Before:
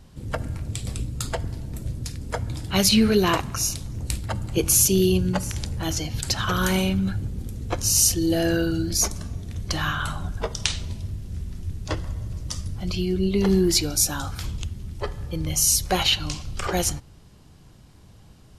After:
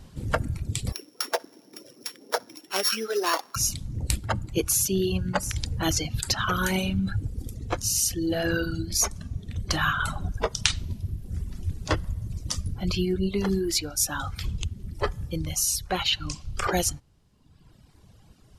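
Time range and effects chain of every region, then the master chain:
0:00.92–0:03.56: samples sorted by size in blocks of 8 samples + high-pass filter 340 Hz 24 dB per octave + flutter between parallel walls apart 10.8 metres, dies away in 0.21 s
whole clip: reverb reduction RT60 1.2 s; dynamic equaliser 1,400 Hz, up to +4 dB, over −41 dBFS, Q 1.4; speech leveller within 4 dB 0.5 s; level −1.5 dB

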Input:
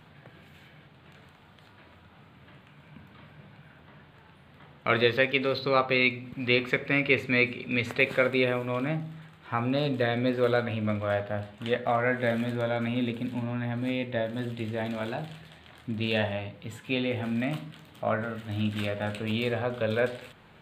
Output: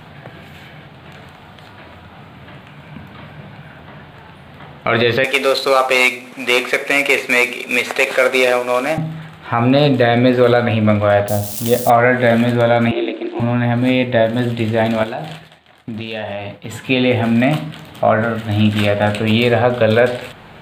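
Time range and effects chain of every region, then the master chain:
0:05.24–0:08.98: variable-slope delta modulation 64 kbit/s + high-pass filter 440 Hz
0:11.28–0:11.90: spike at every zero crossing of −25.5 dBFS + parametric band 1,800 Hz −14 dB 1.9 octaves + one half of a high-frequency compander encoder only
0:12.91–0:13.40: ring modulation 97 Hz + Chebyshev high-pass filter 250 Hz, order 5 + high-frequency loss of the air 120 metres
0:15.03–0:16.74: downward expander −44 dBFS + low-shelf EQ 130 Hz −8.5 dB + downward compressor, threshold −37 dBFS
whole clip: parametric band 720 Hz +4.5 dB 0.44 octaves; boost into a limiter +16 dB; level −1 dB

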